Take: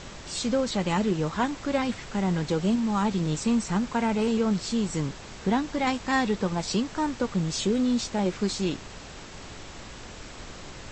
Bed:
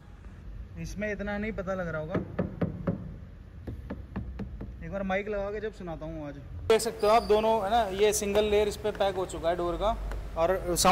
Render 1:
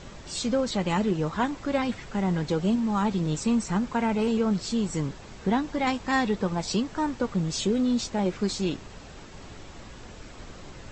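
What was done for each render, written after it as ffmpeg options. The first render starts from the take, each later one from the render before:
-af "afftdn=nr=6:nf=-43"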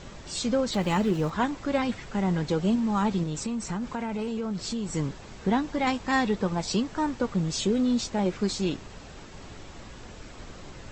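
-filter_complex "[0:a]asettb=1/sr,asplit=3[s0][s1][s2];[s0]atrim=end=0.734[s3];[s1]atrim=start=0.73:end=1.3,asetpts=PTS-STARTPTS,afade=t=in:d=0.004:c=qsin,afade=t=out:st=0.566:d=0.004:c=qsin,aeval=exprs='val(0)+0.5*0.00944*sgn(val(0))':c=same[s4];[s2]atrim=start=1.296[s5];[s3][s4]acrossfade=d=0.004:c1=hsin:c2=qsin[s6];[s6][s5]acrossfade=d=0.004:c1=qsin:c2=hsin,asettb=1/sr,asplit=3[s7][s8][s9];[s7]atrim=end=3.234[s10];[s8]atrim=start=3.23:end=4.95,asetpts=PTS-STARTPTS,afade=t=in:d=0.004:c=qsin,afade=t=out:st=1.716:d=0.004:c=qsin,acompressor=threshold=0.0447:ratio=6:attack=3.2:release=140:knee=1:detection=peak[s11];[s9]atrim=start=4.946[s12];[s10][s11]acrossfade=d=0.004:c1=hsin:c2=qsin[s13];[s13][s12]acrossfade=d=0.004:c1=qsin:c2=hsin"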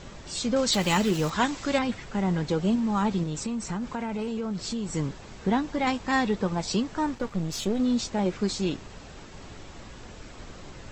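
-filter_complex "[0:a]asettb=1/sr,asplit=3[s0][s1][s2];[s0]atrim=end=0.564[s3];[s1]atrim=start=0.56:end=1.79,asetpts=PTS-STARTPTS,afade=t=in:d=0.004:c=qsin,afade=t=out:st=1.226:d=0.004:c=qsin,highshelf=f=2300:g=12[s4];[s2]atrim=start=1.786[s5];[s3][s4]acrossfade=d=0.004:c1=hsin:c2=qsin[s6];[s6][s5]acrossfade=d=0.004:c1=qsin:c2=hsin,asettb=1/sr,asplit=3[s7][s8][s9];[s7]atrim=end=7.154[s10];[s8]atrim=start=7.15:end=7.8,asetpts=PTS-STARTPTS,afade=t=in:d=0.004:c=qsin,afade=t=out:st=0.646:d=0.004:c=qsin,aeval=exprs='if(lt(val(0),0),0.447*val(0),val(0))':c=same[s11];[s9]atrim=start=7.796[s12];[s10][s11]acrossfade=d=0.004:c1=hsin:c2=qsin[s13];[s13][s12]acrossfade=d=0.004:c1=qsin:c2=hsin"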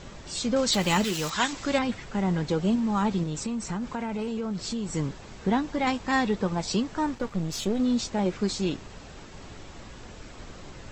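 -filter_complex "[0:a]asettb=1/sr,asplit=3[s0][s1][s2];[s0]atrim=end=1.044[s3];[s1]atrim=start=1.04:end=1.53,asetpts=PTS-STARTPTS,afade=t=in:d=0.004:c=qsin,afade=t=out:st=0.486:d=0.004:c=qsin,tiltshelf=f=1300:g=-6[s4];[s2]atrim=start=1.526[s5];[s3][s4]acrossfade=d=0.004:c1=hsin:c2=qsin[s6];[s6][s5]acrossfade=d=0.004:c1=qsin:c2=hsin"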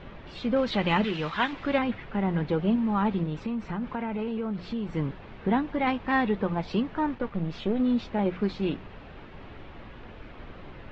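-af "lowpass=f=3100:w=0.5412,lowpass=f=3100:w=1.3066,bandreject=f=60:t=h:w=6,bandreject=f=120:t=h:w=6,bandreject=f=180:t=h:w=6"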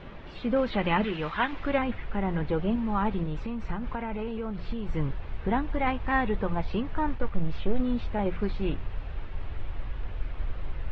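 -filter_complex "[0:a]acrossover=split=3300[s0][s1];[s1]acompressor=threshold=0.00112:ratio=4:attack=1:release=60[s2];[s0][s2]amix=inputs=2:normalize=0,asubboost=boost=8:cutoff=73"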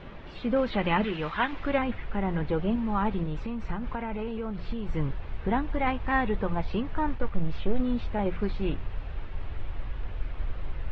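-af anull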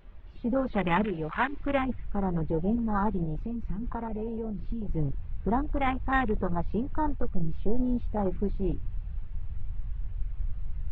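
-af "bandreject=f=520:w=16,afwtdn=0.0282"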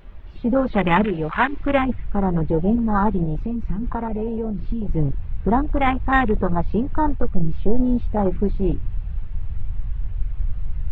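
-af "volume=2.66"

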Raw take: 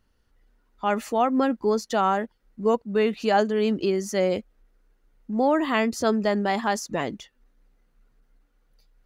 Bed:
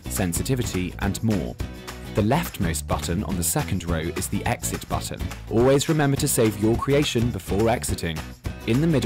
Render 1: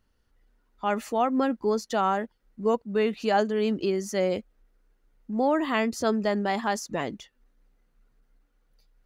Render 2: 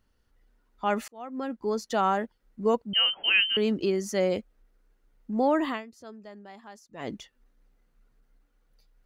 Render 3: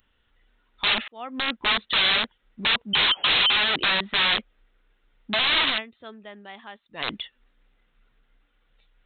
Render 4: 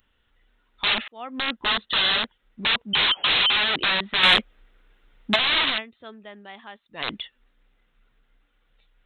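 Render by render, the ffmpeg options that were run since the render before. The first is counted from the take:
-af "volume=0.75"
-filter_complex "[0:a]asettb=1/sr,asplit=3[s0][s1][s2];[s0]atrim=end=2.934[s3];[s1]atrim=start=2.93:end=3.57,asetpts=PTS-STARTPTS,afade=t=in:d=0.004:c=qsin,afade=t=out:st=0.636:d=0.004:c=qsin,lowpass=f=2800:t=q:w=0.5098,lowpass=f=2800:t=q:w=0.6013,lowpass=f=2800:t=q:w=0.9,lowpass=f=2800:t=q:w=2.563,afreqshift=-3300[s4];[s2]atrim=start=3.566[s5];[s3][s4]acrossfade=d=0.004:c1=hsin:c2=qsin[s6];[s6][s5]acrossfade=d=0.004:c1=qsin:c2=hsin,asplit=4[s7][s8][s9][s10];[s7]atrim=end=1.08,asetpts=PTS-STARTPTS,afade=t=out:st=1.076:d=0.004:c=hsin[s11];[s8]atrim=start=1.08:end=5.86,asetpts=PTS-STARTPTS,afade=t=in:d=0.93,afade=t=out:st=4.6:d=0.18:c=qua:silence=0.1[s12];[s9]atrim=start=5.86:end=6.91,asetpts=PTS-STARTPTS,volume=0.1[s13];[s10]atrim=start=6.91,asetpts=PTS-STARTPTS,afade=t=in:d=0.18:c=qua:silence=0.1[s14];[s11][s12][s13][s14]concat=n=4:v=0:a=1"
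-af "aresample=8000,aeval=exprs='(mod(20*val(0)+1,2)-1)/20':c=same,aresample=44100,crystalizer=i=10:c=0"
-filter_complex "[0:a]asettb=1/sr,asplit=3[s0][s1][s2];[s0]atrim=end=1.514[s3];[s1]atrim=start=1.51:end=2.23,asetpts=PTS-STARTPTS,afade=t=in:d=0.004:c=qsin,afade=t=out:st=0.716:d=0.004:c=qsin,bandreject=f=2300:w=7.8[s4];[s2]atrim=start=2.226[s5];[s3][s4]acrossfade=d=0.004:c1=hsin:c2=qsin[s6];[s6][s5]acrossfade=d=0.004:c1=qsin:c2=hsin,asettb=1/sr,asplit=3[s7][s8][s9];[s7]atrim=end=4.234[s10];[s8]atrim=start=4.23:end=5.36,asetpts=PTS-STARTPTS,afade=t=in:d=0.004:c=qsin,afade=t=out:st=1.126:d=0.004:c=qsin,acontrast=70[s11];[s9]atrim=start=5.356[s12];[s10][s11]acrossfade=d=0.004:c1=hsin:c2=qsin[s13];[s13][s12]acrossfade=d=0.004:c1=qsin:c2=hsin"

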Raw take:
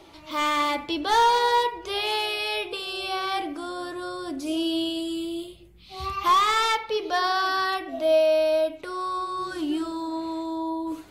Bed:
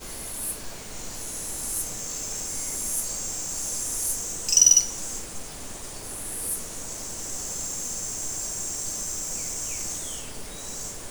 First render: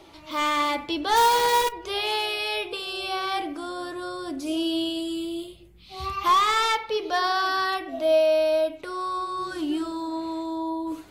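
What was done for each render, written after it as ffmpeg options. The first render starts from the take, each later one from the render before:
-filter_complex "[0:a]asplit=3[s0][s1][s2];[s0]afade=t=out:st=1.15:d=0.02[s3];[s1]acrusher=bits=5:dc=4:mix=0:aa=0.000001,afade=t=in:st=1.15:d=0.02,afade=t=out:st=1.71:d=0.02[s4];[s2]afade=t=in:st=1.71:d=0.02[s5];[s3][s4][s5]amix=inputs=3:normalize=0"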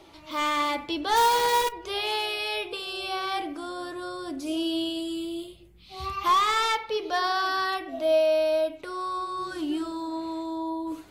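-af "volume=0.794"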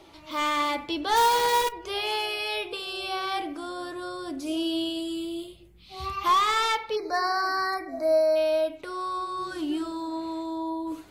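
-filter_complex "[0:a]asettb=1/sr,asplit=3[s0][s1][s2];[s0]atrim=end=1.794[s3];[s1]atrim=start=1.79:end=2.49,asetpts=PTS-STARTPTS,afade=t=in:d=0.004:c=qsin,afade=t=out:st=0.696:d=0.004:c=qsin,bandreject=f=3800:w=12[s4];[s2]atrim=start=2.486[s5];[s3][s4]acrossfade=d=0.004:c1=hsin:c2=qsin[s6];[s6][s5]acrossfade=d=0.004:c1=qsin:c2=hsin,asplit=3[s7][s8][s9];[s7]afade=t=out:st=6.95:d=0.02[s10];[s8]asuperstop=centerf=3100:order=20:qfactor=1.9,afade=t=in:st=6.95:d=0.02,afade=t=out:st=8.35:d=0.02[s11];[s9]afade=t=in:st=8.35:d=0.02[s12];[s10][s11][s12]amix=inputs=3:normalize=0"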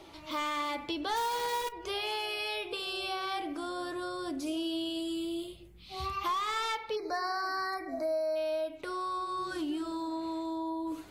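-af "acompressor=threshold=0.0224:ratio=3"

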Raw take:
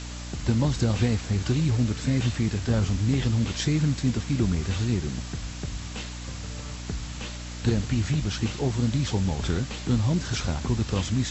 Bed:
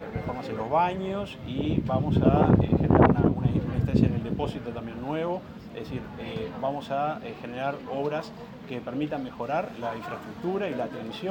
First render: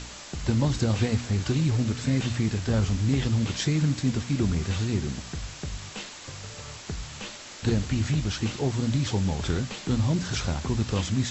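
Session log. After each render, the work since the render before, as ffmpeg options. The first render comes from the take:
-af "bandreject=f=60:t=h:w=4,bandreject=f=120:t=h:w=4,bandreject=f=180:t=h:w=4,bandreject=f=240:t=h:w=4,bandreject=f=300:t=h:w=4"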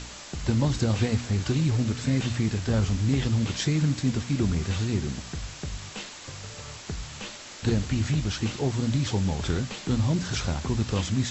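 -af anull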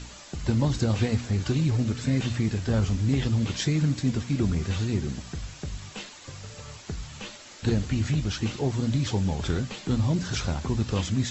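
-af "afftdn=nr=6:nf=-43"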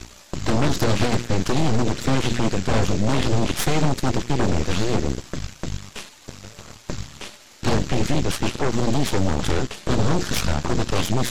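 -af "aeval=exprs='0.224*(cos(1*acos(clip(val(0)/0.224,-1,1)))-cos(1*PI/2))+0.00891*(cos(7*acos(clip(val(0)/0.224,-1,1)))-cos(7*PI/2))+0.1*(cos(8*acos(clip(val(0)/0.224,-1,1)))-cos(8*PI/2))':c=same"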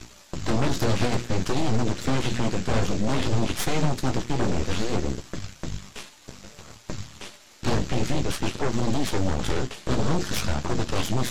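-af "flanger=delay=9.2:depth=8:regen=-41:speed=0.57:shape=sinusoidal"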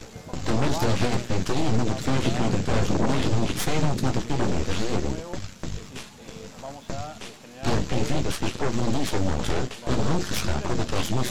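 -filter_complex "[1:a]volume=0.335[s0];[0:a][s0]amix=inputs=2:normalize=0"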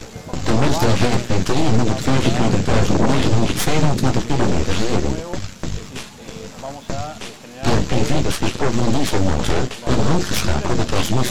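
-af "volume=2.24"

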